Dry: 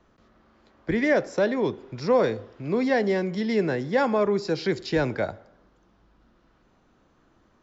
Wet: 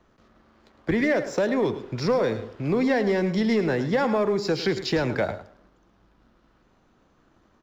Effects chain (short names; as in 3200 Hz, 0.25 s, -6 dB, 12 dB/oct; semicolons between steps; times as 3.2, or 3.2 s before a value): compressor, threshold -24 dBFS, peak gain reduction 8.5 dB; sample leveller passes 1; on a send: echo 0.107 s -12.5 dB; on the sum: gain +2 dB